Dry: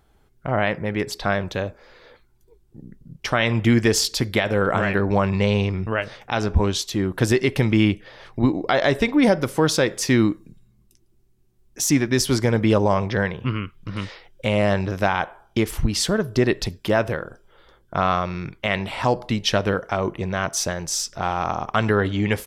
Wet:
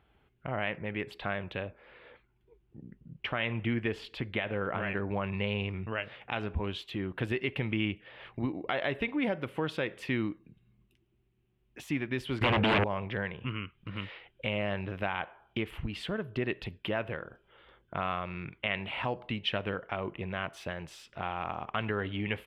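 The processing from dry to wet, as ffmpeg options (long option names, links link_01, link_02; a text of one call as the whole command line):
ffmpeg -i in.wav -filter_complex "[0:a]asettb=1/sr,asplit=3[link_01][link_02][link_03];[link_01]atrim=end=1.654[link_04];[link_02]atrim=start=1.65:end=5.21,asetpts=PTS-STARTPTS,afade=type=in:duration=0.004:curve=qsin,afade=type=out:start_time=3.556:duration=0.004:curve=qsin,lowpass=frequency=3200:poles=1[link_05];[link_03]atrim=start=5.206[link_06];[link_04][link_05]acrossfade=duration=0.004:curve1=hsin:curve2=qsin[link_07];[link_07][link_06]acrossfade=duration=0.004:curve1=qsin:curve2=hsin,asettb=1/sr,asplit=3[link_08][link_09][link_10];[link_08]atrim=end=12.414[link_11];[link_09]atrim=start=12.41:end=12.84,asetpts=PTS-STARTPTS,afade=type=in:duration=0.004:curve=qsin,afade=type=out:start_time=0.426:duration=0.004:curve=qsin,aeval=exprs='0.447*sin(PI/2*4.47*val(0)/0.447)':channel_layout=same[link_12];[link_10]atrim=start=12.836[link_13];[link_11][link_12]acrossfade=duration=0.004:curve1=hsin:curve2=qsin[link_14];[link_14][link_13]acrossfade=duration=0.004:curve1=qsin:curve2=hsin,acompressor=threshold=-37dB:ratio=1.5,highpass=45,highshelf=frequency=4100:width_type=q:width=3:gain=-13.5,volume=-6dB" out.wav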